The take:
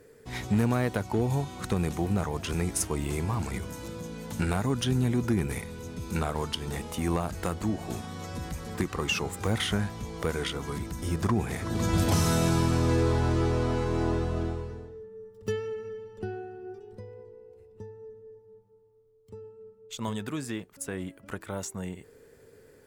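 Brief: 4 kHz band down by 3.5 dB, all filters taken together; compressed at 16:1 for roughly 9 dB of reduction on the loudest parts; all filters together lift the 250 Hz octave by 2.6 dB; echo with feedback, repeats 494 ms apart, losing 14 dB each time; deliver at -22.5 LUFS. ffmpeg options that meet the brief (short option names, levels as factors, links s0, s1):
-af "equalizer=f=250:t=o:g=3.5,equalizer=f=4000:t=o:g=-5,acompressor=threshold=0.0398:ratio=16,aecho=1:1:494|988:0.2|0.0399,volume=4.22"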